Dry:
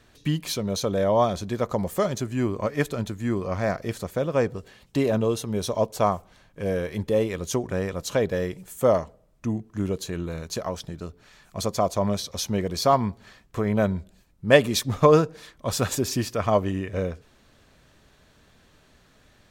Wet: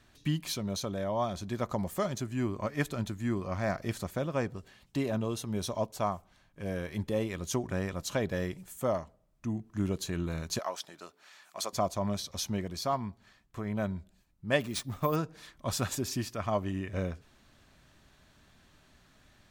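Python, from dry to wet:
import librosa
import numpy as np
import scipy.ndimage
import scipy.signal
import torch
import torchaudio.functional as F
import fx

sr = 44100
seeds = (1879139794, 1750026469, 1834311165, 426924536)

y = fx.highpass(x, sr, hz=560.0, slope=12, at=(10.59, 11.73))
y = fx.resample_bad(y, sr, factor=3, down='none', up='hold', at=(14.6, 15.16))
y = fx.peak_eq(y, sr, hz=470.0, db=-8.0, octaves=0.4)
y = fx.rider(y, sr, range_db=5, speed_s=0.5)
y = y * librosa.db_to_amplitude(-6.5)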